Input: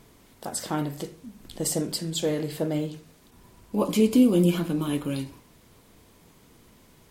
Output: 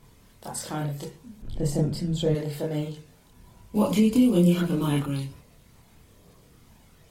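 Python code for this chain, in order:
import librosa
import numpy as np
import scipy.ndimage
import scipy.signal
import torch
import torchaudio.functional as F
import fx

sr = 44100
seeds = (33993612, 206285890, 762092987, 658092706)

y = fx.chorus_voices(x, sr, voices=6, hz=0.29, base_ms=28, depth_ms=1.2, mix_pct=55)
y = fx.tilt_eq(y, sr, slope=-3.0, at=(1.42, 2.35))
y = fx.band_squash(y, sr, depth_pct=70, at=(3.75, 5.06))
y = F.gain(torch.from_numpy(y), 1.5).numpy()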